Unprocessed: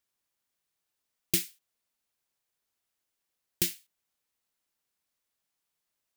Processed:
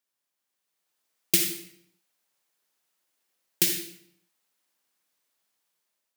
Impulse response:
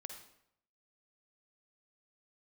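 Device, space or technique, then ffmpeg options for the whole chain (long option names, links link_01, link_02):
far laptop microphone: -filter_complex "[0:a]highpass=frequency=150:poles=1[link_01];[1:a]atrim=start_sample=2205[link_02];[link_01][link_02]afir=irnorm=-1:irlink=0,highpass=130,dynaudnorm=framelen=320:gausssize=5:maxgain=7dB,volume=4dB"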